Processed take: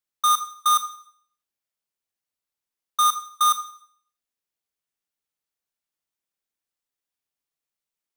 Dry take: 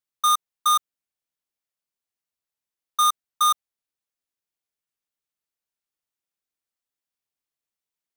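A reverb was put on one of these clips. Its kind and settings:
four-comb reverb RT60 0.58 s, combs from 27 ms, DRR 9.5 dB

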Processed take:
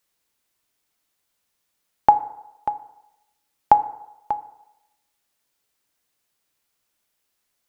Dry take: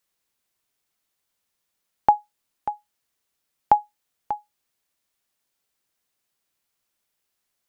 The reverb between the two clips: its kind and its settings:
feedback delay network reverb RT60 0.92 s, low-frequency decay 0.75×, high-frequency decay 0.5×, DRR 11.5 dB
level +3 dB

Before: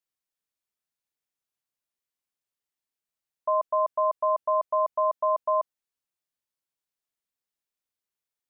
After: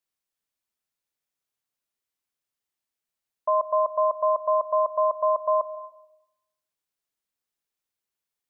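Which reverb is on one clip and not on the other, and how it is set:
comb and all-pass reverb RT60 0.91 s, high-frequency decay 0.5×, pre-delay 95 ms, DRR 15.5 dB
level +2 dB

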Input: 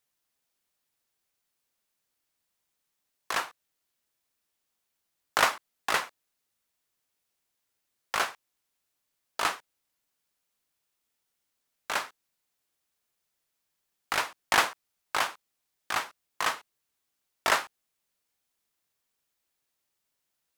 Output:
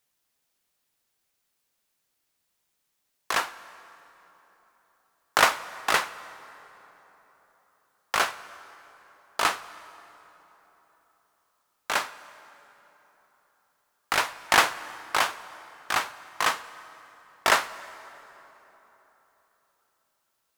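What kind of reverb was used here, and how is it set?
dense smooth reverb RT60 3.9 s, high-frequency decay 0.6×, DRR 15 dB
level +4 dB

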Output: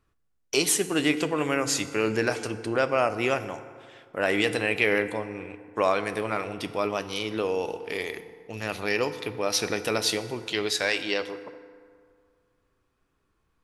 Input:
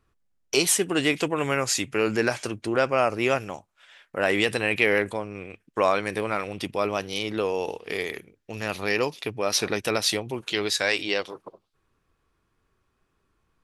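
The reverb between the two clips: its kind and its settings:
feedback delay network reverb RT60 2.1 s, low-frequency decay 0.95×, high-frequency decay 0.5×, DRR 10.5 dB
level −2 dB

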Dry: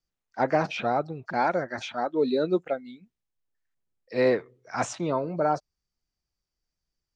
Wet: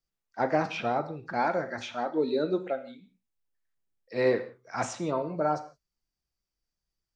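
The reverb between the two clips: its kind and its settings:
reverb whose tail is shaped and stops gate 200 ms falling, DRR 8 dB
level −3 dB

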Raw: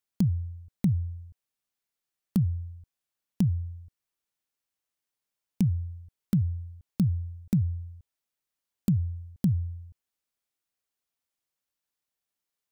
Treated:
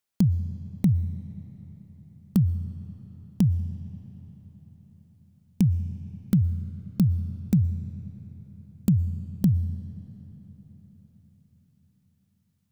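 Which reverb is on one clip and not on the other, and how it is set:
comb and all-pass reverb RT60 5 s, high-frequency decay 0.65×, pre-delay 80 ms, DRR 14.5 dB
level +3.5 dB

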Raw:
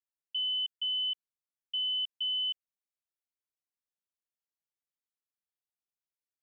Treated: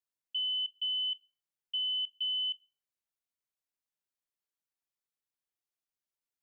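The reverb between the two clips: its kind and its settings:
rectangular room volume 500 cubic metres, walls furnished, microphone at 0.32 metres
level −1 dB

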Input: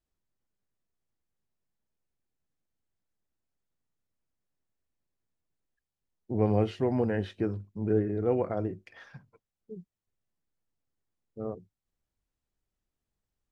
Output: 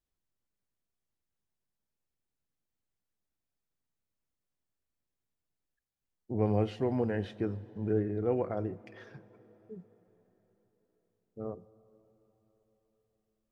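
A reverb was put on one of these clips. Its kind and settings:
dense smooth reverb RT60 4.6 s, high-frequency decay 0.8×, DRR 18.5 dB
level −3 dB

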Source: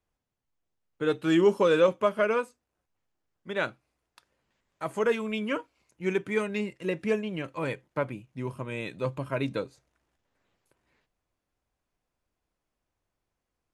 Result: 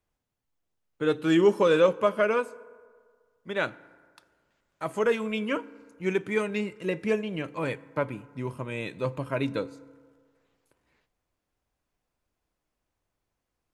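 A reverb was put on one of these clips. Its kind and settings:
feedback delay network reverb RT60 1.8 s, low-frequency decay 0.85×, high-frequency decay 0.45×, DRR 18 dB
level +1 dB

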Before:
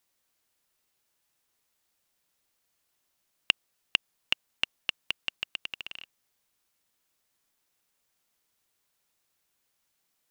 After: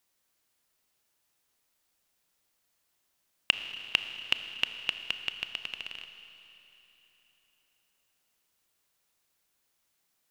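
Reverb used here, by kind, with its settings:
four-comb reverb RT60 3.5 s, combs from 26 ms, DRR 8.5 dB

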